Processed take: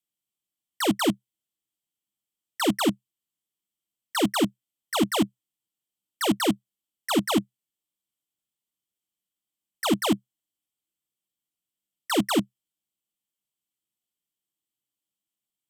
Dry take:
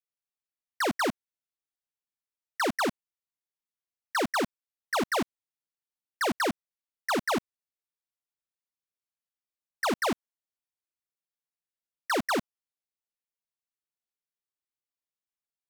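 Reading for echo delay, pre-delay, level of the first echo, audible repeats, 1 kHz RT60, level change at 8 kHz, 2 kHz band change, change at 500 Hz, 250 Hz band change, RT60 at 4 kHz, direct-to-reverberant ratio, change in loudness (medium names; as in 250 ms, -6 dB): no echo, no reverb, no echo, no echo, no reverb, +6.5 dB, -2.5 dB, +2.0 dB, +8.5 dB, no reverb, no reverb, +4.0 dB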